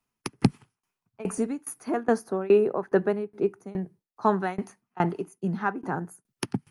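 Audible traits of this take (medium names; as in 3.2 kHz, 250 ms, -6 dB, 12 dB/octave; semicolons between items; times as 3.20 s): tremolo saw down 2.4 Hz, depth 95%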